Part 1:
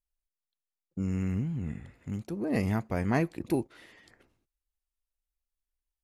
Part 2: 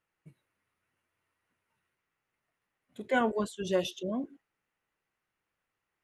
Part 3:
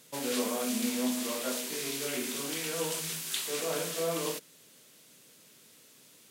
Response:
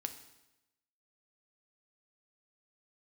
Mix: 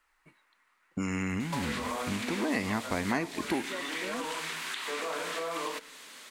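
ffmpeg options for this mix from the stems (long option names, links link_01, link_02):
-filter_complex "[0:a]volume=2.5dB,asplit=2[link_01][link_02];[link_02]volume=-6.5dB[link_03];[1:a]volume=-6dB[link_04];[2:a]acompressor=threshold=-33dB:ratio=6,adelay=1400,volume=-4dB,asplit=2[link_05][link_06];[link_06]volume=-11.5dB[link_07];[link_04][link_05]amix=inputs=2:normalize=0,equalizer=frequency=1200:width_type=o:width=2.6:gain=10,acompressor=threshold=-37dB:ratio=6,volume=0dB[link_08];[3:a]atrim=start_sample=2205[link_09];[link_03][link_07]amix=inputs=2:normalize=0[link_10];[link_10][link_09]afir=irnorm=-1:irlink=0[link_11];[link_01][link_08][link_11]amix=inputs=3:normalize=0,equalizer=frequency=125:width_type=o:width=1:gain=-9,equalizer=frequency=250:width_type=o:width=1:gain=7,equalizer=frequency=1000:width_type=o:width=1:gain=9,equalizer=frequency=2000:width_type=o:width=1:gain=9,equalizer=frequency=4000:width_type=o:width=1:gain=8,equalizer=frequency=8000:width_type=o:width=1:gain=7,acrossover=split=710|3100[link_12][link_13][link_14];[link_12]acompressor=threshold=-32dB:ratio=4[link_15];[link_13]acompressor=threshold=-36dB:ratio=4[link_16];[link_14]acompressor=threshold=-45dB:ratio=4[link_17];[link_15][link_16][link_17]amix=inputs=3:normalize=0"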